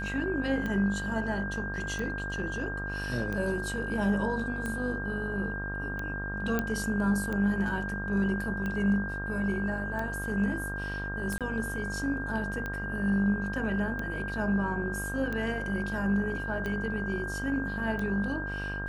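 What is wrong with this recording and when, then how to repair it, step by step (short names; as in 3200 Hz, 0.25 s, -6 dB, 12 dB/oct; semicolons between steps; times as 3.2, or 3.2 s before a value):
buzz 50 Hz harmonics 30 -37 dBFS
tick 45 rpm -22 dBFS
tone 1600 Hz -35 dBFS
6.59 pop -15 dBFS
11.38–11.41 gap 27 ms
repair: de-click; de-hum 50 Hz, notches 30; notch 1600 Hz, Q 30; interpolate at 11.38, 27 ms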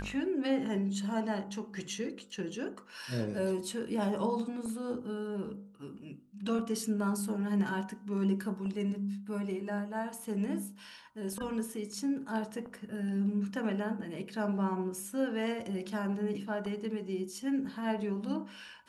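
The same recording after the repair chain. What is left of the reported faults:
none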